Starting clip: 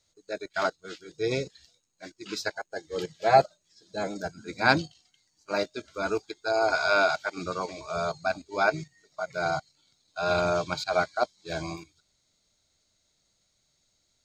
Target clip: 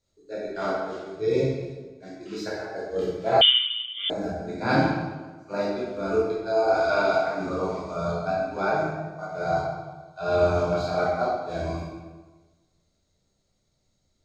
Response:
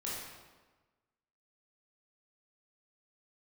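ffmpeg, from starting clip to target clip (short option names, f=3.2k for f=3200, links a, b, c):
-filter_complex "[0:a]tiltshelf=f=850:g=6[a];[1:a]atrim=start_sample=2205[b];[a][b]afir=irnorm=-1:irlink=0,asettb=1/sr,asplit=3[c][d][e];[c]atrim=end=3.414[f];[d]atrim=start=3.41:end=4.1,asetpts=PTS-STARTPTS,afade=t=in:d=0.004:c=qsin,afade=t=out:st=0.686:d=0.004:c=qsin,lowpass=f=3.1k:t=q:w=0.5098,lowpass=f=3.1k:t=q:w=0.6013,lowpass=f=3.1k:t=q:w=0.9,lowpass=f=3.1k:t=q:w=2.563,afreqshift=-3700[g];[e]atrim=start=4.096[h];[f][g]acrossfade=d=0.004:c1=hsin:c2=qsin[i];[i][h]acrossfade=d=0.004:c1=qsin:c2=hsin,volume=-1dB"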